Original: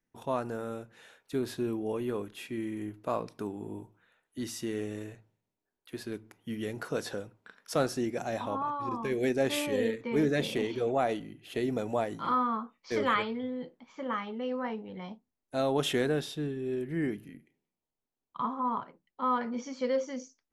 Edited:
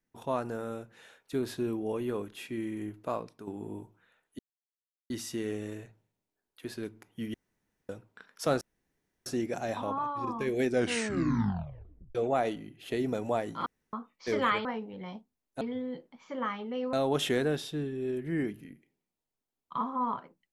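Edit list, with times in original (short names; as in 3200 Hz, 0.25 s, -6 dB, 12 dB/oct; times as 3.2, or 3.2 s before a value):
3–3.47 fade out linear, to -11.5 dB
4.39 insert silence 0.71 s
6.63–7.18 room tone
7.9 insert room tone 0.65 s
9.3 tape stop 1.49 s
12.3–12.57 room tone
14.61–15.57 move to 13.29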